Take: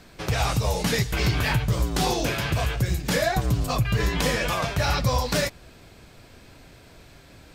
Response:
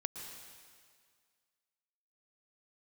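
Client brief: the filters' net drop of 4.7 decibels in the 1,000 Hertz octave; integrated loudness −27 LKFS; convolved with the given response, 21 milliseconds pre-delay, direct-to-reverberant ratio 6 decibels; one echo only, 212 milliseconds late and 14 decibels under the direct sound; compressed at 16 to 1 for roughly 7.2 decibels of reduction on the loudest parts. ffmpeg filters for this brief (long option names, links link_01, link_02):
-filter_complex "[0:a]equalizer=frequency=1000:width_type=o:gain=-6.5,acompressor=threshold=-25dB:ratio=16,aecho=1:1:212:0.2,asplit=2[link_01][link_02];[1:a]atrim=start_sample=2205,adelay=21[link_03];[link_02][link_03]afir=irnorm=-1:irlink=0,volume=-5.5dB[link_04];[link_01][link_04]amix=inputs=2:normalize=0,volume=2.5dB"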